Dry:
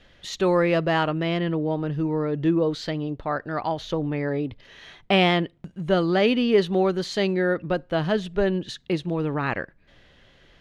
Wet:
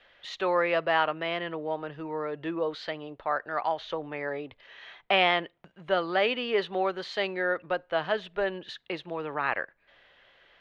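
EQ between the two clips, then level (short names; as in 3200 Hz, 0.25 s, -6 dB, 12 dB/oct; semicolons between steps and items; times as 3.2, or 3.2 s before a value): three-band isolator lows -19 dB, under 500 Hz, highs -20 dB, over 3900 Hz; 0.0 dB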